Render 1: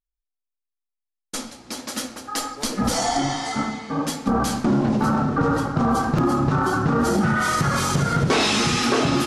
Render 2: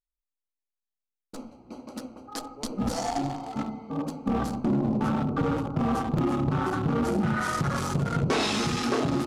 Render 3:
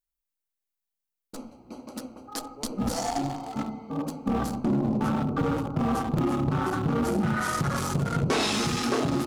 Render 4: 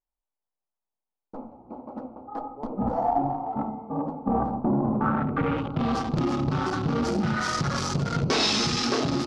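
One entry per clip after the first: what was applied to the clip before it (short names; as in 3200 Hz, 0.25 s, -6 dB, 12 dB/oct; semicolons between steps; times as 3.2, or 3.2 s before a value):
Wiener smoothing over 25 samples; gain -5 dB
high shelf 10000 Hz +10 dB
low-pass sweep 870 Hz -> 5200 Hz, 4.76–6.02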